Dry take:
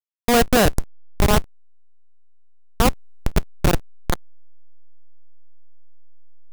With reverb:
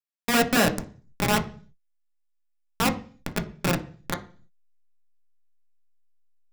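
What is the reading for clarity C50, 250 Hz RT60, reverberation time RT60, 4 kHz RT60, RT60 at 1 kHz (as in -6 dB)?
16.5 dB, 0.50 s, 0.40 s, 0.50 s, 0.40 s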